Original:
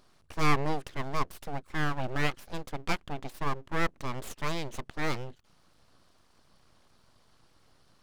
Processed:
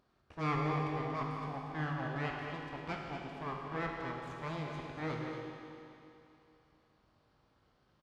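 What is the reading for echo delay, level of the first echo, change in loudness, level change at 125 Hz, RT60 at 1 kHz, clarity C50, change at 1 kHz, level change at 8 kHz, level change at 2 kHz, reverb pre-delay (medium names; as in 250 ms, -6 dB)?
235 ms, -8.5 dB, -5.0 dB, -3.0 dB, 2.8 s, 0.0 dB, -4.5 dB, -18.0 dB, -7.0 dB, 19 ms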